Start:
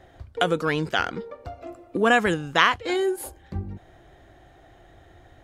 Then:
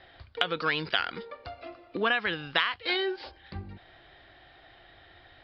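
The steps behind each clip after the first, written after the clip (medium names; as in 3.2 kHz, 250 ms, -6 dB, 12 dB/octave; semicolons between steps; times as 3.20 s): steep low-pass 5 kHz 96 dB/octave; tilt shelf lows -9 dB, about 1.1 kHz; compression 6:1, threshold -23 dBFS, peak gain reduction 13.5 dB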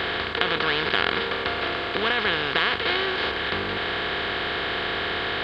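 spectral levelling over time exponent 0.2; trim -3 dB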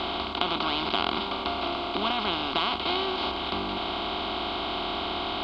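distance through air 66 m; static phaser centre 470 Hz, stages 6; trim +2.5 dB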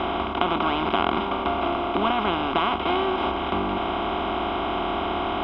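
boxcar filter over 10 samples; trim +6.5 dB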